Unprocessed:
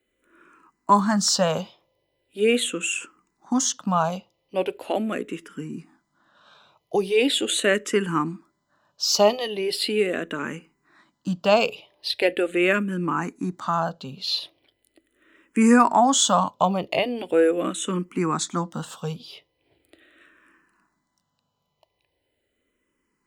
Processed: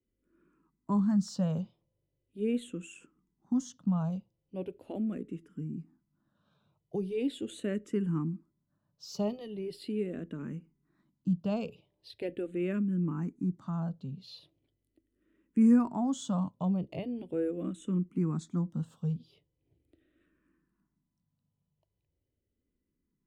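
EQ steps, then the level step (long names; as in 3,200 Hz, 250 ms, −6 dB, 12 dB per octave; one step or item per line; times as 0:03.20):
drawn EQ curve 160 Hz 0 dB, 760 Hz −21 dB, 1,700 Hz −24 dB
0.0 dB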